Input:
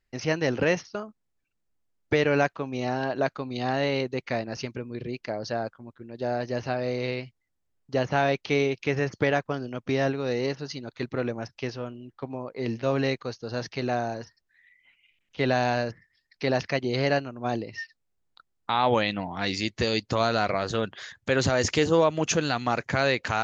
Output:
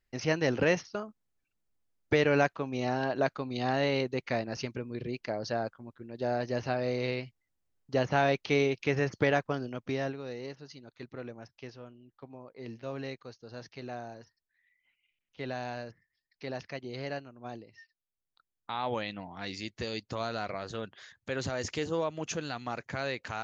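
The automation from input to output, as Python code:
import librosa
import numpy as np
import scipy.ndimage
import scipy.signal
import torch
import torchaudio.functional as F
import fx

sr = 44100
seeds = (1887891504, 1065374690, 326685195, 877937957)

y = fx.gain(x, sr, db=fx.line((9.63, -2.5), (10.37, -13.0), (17.46, -13.0), (17.81, -19.0), (18.71, -10.5)))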